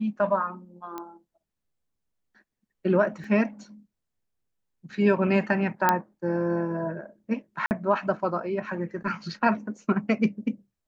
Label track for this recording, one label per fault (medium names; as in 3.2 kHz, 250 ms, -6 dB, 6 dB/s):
0.980000	0.980000	pop -21 dBFS
3.240000	3.240000	dropout 2.9 ms
5.890000	5.890000	pop -6 dBFS
7.660000	7.710000	dropout 49 ms